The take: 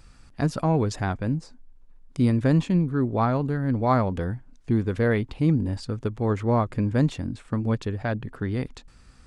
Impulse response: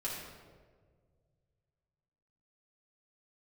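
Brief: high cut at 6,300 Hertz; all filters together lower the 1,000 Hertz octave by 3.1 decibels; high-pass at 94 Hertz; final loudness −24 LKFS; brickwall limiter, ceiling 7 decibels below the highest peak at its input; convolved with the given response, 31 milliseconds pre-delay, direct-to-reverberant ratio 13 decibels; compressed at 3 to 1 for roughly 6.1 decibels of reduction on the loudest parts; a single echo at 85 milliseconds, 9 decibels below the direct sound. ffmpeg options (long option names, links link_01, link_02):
-filter_complex "[0:a]highpass=94,lowpass=6300,equalizer=frequency=1000:width_type=o:gain=-4,acompressor=threshold=-25dB:ratio=3,alimiter=limit=-22dB:level=0:latency=1,aecho=1:1:85:0.355,asplit=2[link_01][link_02];[1:a]atrim=start_sample=2205,adelay=31[link_03];[link_02][link_03]afir=irnorm=-1:irlink=0,volume=-15.5dB[link_04];[link_01][link_04]amix=inputs=2:normalize=0,volume=8dB"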